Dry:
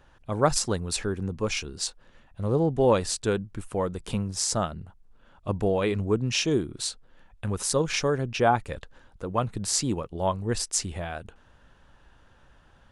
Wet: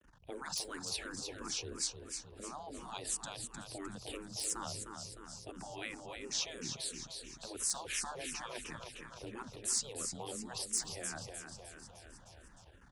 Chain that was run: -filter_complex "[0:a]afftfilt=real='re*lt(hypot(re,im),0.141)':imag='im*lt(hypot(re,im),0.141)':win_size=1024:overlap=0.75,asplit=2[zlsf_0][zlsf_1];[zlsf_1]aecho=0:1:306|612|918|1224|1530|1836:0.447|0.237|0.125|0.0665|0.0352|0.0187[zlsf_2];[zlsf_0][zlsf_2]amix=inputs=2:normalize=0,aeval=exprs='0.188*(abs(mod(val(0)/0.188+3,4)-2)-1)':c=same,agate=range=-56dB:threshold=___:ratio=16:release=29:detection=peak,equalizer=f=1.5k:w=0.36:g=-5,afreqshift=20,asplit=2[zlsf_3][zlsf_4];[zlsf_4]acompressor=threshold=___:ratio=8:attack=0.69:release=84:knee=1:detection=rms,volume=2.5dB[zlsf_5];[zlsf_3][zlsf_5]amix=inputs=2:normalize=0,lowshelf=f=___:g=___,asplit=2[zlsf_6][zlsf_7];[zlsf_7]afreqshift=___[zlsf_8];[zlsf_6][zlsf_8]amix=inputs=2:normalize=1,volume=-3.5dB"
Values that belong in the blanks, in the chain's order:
-60dB, -47dB, 200, -6, -2.9